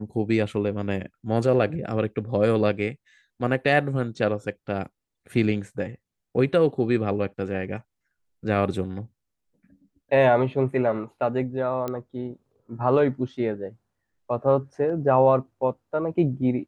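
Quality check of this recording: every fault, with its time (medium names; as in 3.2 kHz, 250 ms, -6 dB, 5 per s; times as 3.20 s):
11.88 s: pop -16 dBFS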